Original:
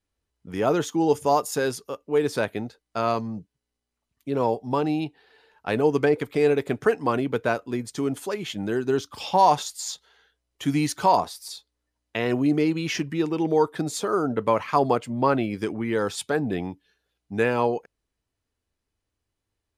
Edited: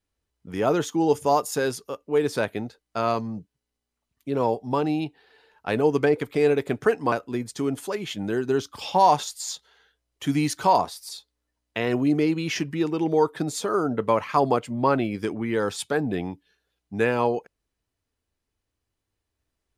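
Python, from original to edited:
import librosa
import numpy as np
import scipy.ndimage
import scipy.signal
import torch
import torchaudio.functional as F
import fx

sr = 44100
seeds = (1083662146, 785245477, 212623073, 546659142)

y = fx.edit(x, sr, fx.cut(start_s=7.12, length_s=0.39), tone=tone)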